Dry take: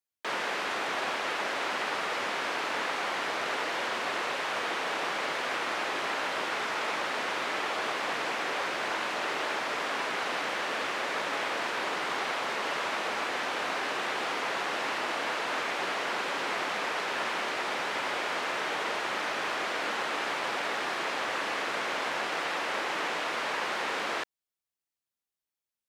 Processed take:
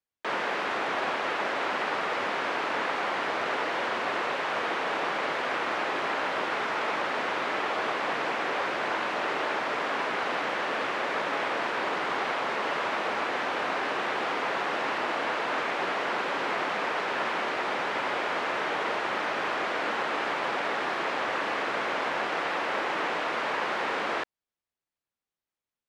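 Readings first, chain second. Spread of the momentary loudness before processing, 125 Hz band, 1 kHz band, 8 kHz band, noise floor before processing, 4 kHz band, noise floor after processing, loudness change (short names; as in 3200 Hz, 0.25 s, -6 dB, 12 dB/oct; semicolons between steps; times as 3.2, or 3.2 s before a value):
0 LU, +4.0 dB, +3.0 dB, -6.0 dB, under -85 dBFS, -1.5 dB, under -85 dBFS, +2.0 dB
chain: LPF 2100 Hz 6 dB/oct; gain +4 dB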